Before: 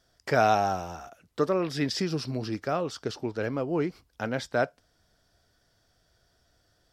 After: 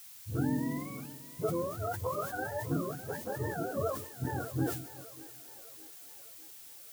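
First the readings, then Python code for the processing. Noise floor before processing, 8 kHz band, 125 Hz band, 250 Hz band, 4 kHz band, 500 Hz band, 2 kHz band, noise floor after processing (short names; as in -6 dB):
-69 dBFS, -1.0 dB, -1.5 dB, -4.0 dB, -14.0 dB, -8.0 dB, -8.5 dB, -51 dBFS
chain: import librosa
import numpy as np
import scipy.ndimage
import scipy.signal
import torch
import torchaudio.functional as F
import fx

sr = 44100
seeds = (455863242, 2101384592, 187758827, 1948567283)

p1 = fx.octave_mirror(x, sr, pivot_hz=440.0)
p2 = fx.notch(p1, sr, hz=370.0, q=12.0)
p3 = fx.rider(p2, sr, range_db=4, speed_s=0.5)
p4 = fx.dispersion(p3, sr, late='highs', ms=57.0, hz=340.0)
p5 = fx.dmg_noise_colour(p4, sr, seeds[0], colour='blue', level_db=-45.0)
p6 = p5 + fx.echo_split(p5, sr, split_hz=340.0, low_ms=189, high_ms=604, feedback_pct=52, wet_db=-15.5, dry=0)
p7 = fx.sustainer(p6, sr, db_per_s=79.0)
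y = p7 * 10.0 ** (-6.0 / 20.0)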